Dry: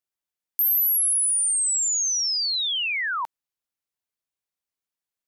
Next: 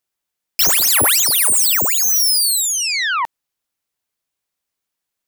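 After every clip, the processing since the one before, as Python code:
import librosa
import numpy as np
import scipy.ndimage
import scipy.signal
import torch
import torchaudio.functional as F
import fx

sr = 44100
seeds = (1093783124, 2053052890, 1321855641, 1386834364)

y = fx.self_delay(x, sr, depth_ms=0.16)
y = F.gain(torch.from_numpy(y), 9.0).numpy()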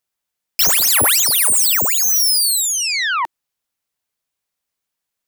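y = fx.peak_eq(x, sr, hz=340.0, db=-4.5, octaves=0.27)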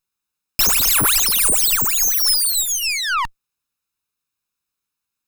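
y = fx.lower_of_two(x, sr, delay_ms=0.77)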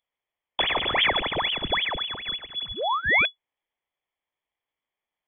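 y = fx.freq_invert(x, sr, carrier_hz=3400)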